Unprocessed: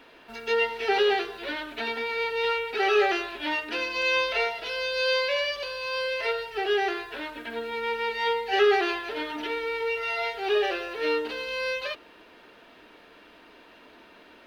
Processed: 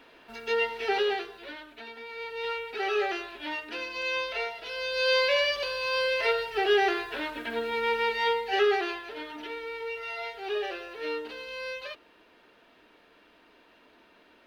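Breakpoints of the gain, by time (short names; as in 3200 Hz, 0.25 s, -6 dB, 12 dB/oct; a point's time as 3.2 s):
0.86 s -2.5 dB
1.91 s -13.5 dB
2.52 s -6 dB
4.62 s -6 dB
5.23 s +2 dB
8.02 s +2 dB
9.1 s -7 dB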